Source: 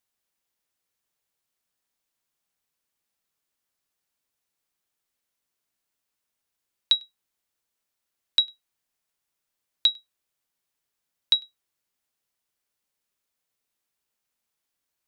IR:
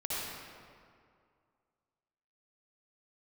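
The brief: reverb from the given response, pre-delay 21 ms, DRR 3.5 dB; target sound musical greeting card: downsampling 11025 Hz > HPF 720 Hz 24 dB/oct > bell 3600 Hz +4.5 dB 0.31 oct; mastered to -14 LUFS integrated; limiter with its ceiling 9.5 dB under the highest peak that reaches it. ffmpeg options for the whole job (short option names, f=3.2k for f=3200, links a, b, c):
-filter_complex "[0:a]alimiter=limit=-18.5dB:level=0:latency=1,asplit=2[a][b];[1:a]atrim=start_sample=2205,adelay=21[c];[b][c]afir=irnorm=-1:irlink=0,volume=-9dB[d];[a][d]amix=inputs=2:normalize=0,aresample=11025,aresample=44100,highpass=f=720:w=0.5412,highpass=f=720:w=1.3066,equalizer=f=3.6k:t=o:w=0.31:g=4.5,volume=13.5dB"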